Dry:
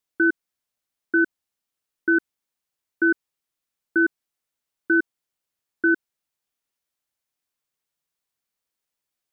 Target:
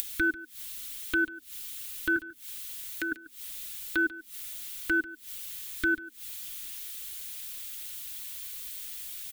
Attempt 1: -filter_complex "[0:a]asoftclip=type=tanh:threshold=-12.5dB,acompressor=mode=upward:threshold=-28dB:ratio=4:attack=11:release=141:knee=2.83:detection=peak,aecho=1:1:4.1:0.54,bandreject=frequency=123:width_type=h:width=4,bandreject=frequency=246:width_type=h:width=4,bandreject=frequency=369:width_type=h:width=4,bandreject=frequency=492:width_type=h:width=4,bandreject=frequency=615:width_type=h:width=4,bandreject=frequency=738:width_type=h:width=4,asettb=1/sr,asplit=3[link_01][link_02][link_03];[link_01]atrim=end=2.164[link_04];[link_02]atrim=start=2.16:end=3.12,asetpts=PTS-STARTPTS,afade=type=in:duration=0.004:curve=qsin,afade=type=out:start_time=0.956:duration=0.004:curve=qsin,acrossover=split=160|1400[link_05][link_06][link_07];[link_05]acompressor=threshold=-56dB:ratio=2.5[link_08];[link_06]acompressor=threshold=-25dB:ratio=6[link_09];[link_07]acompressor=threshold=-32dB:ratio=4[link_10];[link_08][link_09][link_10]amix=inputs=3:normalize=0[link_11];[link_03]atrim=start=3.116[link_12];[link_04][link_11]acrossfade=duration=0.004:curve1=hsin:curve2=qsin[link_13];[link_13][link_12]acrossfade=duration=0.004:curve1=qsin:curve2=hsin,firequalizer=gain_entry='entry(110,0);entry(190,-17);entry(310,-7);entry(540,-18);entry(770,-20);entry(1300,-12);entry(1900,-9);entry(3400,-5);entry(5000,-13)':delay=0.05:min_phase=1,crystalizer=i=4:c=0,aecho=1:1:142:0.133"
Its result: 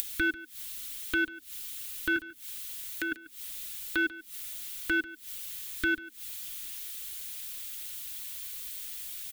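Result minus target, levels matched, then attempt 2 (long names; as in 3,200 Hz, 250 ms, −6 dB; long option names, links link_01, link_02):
soft clipping: distortion +22 dB
-filter_complex "[0:a]asoftclip=type=tanh:threshold=-0.5dB,acompressor=mode=upward:threshold=-28dB:ratio=4:attack=11:release=141:knee=2.83:detection=peak,aecho=1:1:4.1:0.54,bandreject=frequency=123:width_type=h:width=4,bandreject=frequency=246:width_type=h:width=4,bandreject=frequency=369:width_type=h:width=4,bandreject=frequency=492:width_type=h:width=4,bandreject=frequency=615:width_type=h:width=4,bandreject=frequency=738:width_type=h:width=4,asettb=1/sr,asplit=3[link_01][link_02][link_03];[link_01]atrim=end=2.164[link_04];[link_02]atrim=start=2.16:end=3.12,asetpts=PTS-STARTPTS,afade=type=in:duration=0.004:curve=qsin,afade=type=out:start_time=0.956:duration=0.004:curve=qsin,acrossover=split=160|1400[link_05][link_06][link_07];[link_05]acompressor=threshold=-56dB:ratio=2.5[link_08];[link_06]acompressor=threshold=-25dB:ratio=6[link_09];[link_07]acompressor=threshold=-32dB:ratio=4[link_10];[link_08][link_09][link_10]amix=inputs=3:normalize=0[link_11];[link_03]atrim=start=3.116[link_12];[link_04][link_11]acrossfade=duration=0.004:curve1=hsin:curve2=qsin[link_13];[link_13][link_12]acrossfade=duration=0.004:curve1=qsin:curve2=hsin,firequalizer=gain_entry='entry(110,0);entry(190,-17);entry(310,-7);entry(540,-18);entry(770,-20);entry(1300,-12);entry(1900,-9);entry(3400,-5);entry(5000,-13)':delay=0.05:min_phase=1,crystalizer=i=4:c=0,aecho=1:1:142:0.133"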